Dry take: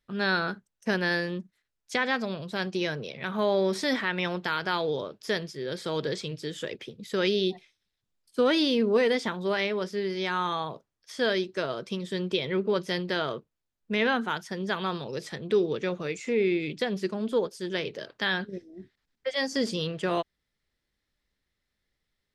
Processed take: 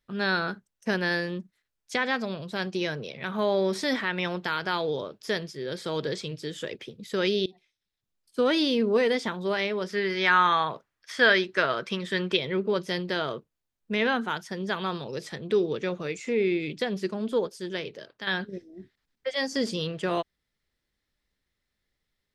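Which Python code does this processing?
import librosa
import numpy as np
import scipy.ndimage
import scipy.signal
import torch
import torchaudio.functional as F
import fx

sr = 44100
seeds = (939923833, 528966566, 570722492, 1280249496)

y = fx.peak_eq(x, sr, hz=1700.0, db=12.0, octaves=1.8, at=(9.89, 12.37))
y = fx.edit(y, sr, fx.fade_in_from(start_s=7.46, length_s=1.26, curve='qsin', floor_db=-22.5),
    fx.fade_out_to(start_s=17.5, length_s=0.77, floor_db=-9.0), tone=tone)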